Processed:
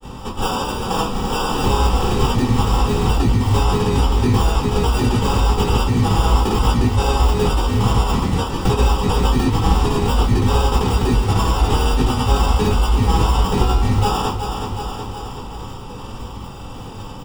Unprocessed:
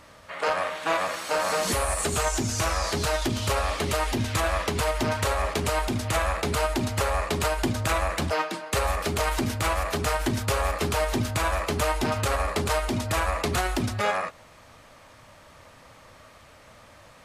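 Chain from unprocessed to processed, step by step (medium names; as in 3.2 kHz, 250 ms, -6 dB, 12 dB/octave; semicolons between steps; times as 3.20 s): sample-and-hold 21×; granulator, pitch spread up and down by 0 st; feedback delay 370 ms, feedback 51%, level -12 dB; compression 2:1, threshold -42 dBFS, peak gain reduction 11.5 dB; graphic EQ with 31 bands 630 Hz -11 dB, 1.6 kHz -9 dB, 12.5 kHz -10 dB; reverberation RT60 0.25 s, pre-delay 3 ms, DRR -5 dB; trim +7 dB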